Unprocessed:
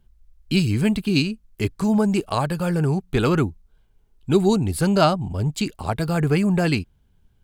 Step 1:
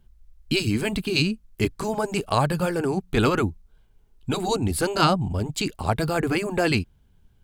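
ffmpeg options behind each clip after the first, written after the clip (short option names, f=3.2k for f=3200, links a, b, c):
-af "afftfilt=real='re*lt(hypot(re,im),0.891)':imag='im*lt(hypot(re,im),0.891)':win_size=1024:overlap=0.75,volume=1.5dB"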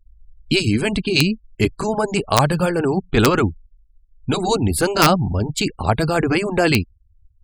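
-af "afftfilt=real='re*gte(hypot(re,im),0.01)':imag='im*gte(hypot(re,im),0.01)':win_size=1024:overlap=0.75,aeval=exprs='(mod(2.51*val(0)+1,2)-1)/2.51':c=same,volume=5.5dB"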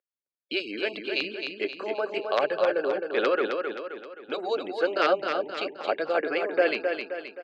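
-filter_complex "[0:a]highpass=f=360:w=0.5412,highpass=f=360:w=1.3066,equalizer=f=550:t=q:w=4:g=9,equalizer=f=930:t=q:w=4:g=-8,equalizer=f=1.6k:t=q:w=4:g=4,lowpass=f=3.8k:w=0.5412,lowpass=f=3.8k:w=1.3066,asplit=2[a][b];[b]aecho=0:1:263|526|789|1052|1315|1578:0.531|0.25|0.117|0.0551|0.0259|0.0122[c];[a][c]amix=inputs=2:normalize=0,volume=-9dB"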